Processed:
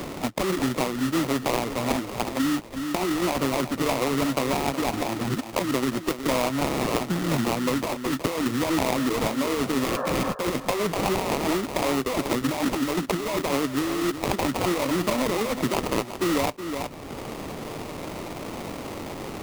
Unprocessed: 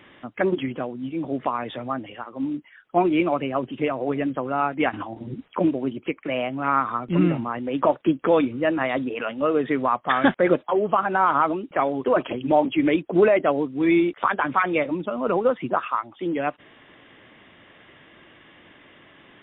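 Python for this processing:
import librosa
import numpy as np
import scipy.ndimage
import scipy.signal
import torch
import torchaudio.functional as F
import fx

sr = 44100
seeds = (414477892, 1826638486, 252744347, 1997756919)

p1 = fx.sample_hold(x, sr, seeds[0], rate_hz=1600.0, jitter_pct=20)
p2 = fx.over_compress(p1, sr, threshold_db=-25.0, ratio=-1.0)
p3 = fx.spec_repair(p2, sr, seeds[1], start_s=9.87, length_s=0.43, low_hz=410.0, high_hz=1800.0, source='before')
p4 = p3 + fx.echo_single(p3, sr, ms=368, db=-12.0, dry=0)
y = fx.band_squash(p4, sr, depth_pct=70)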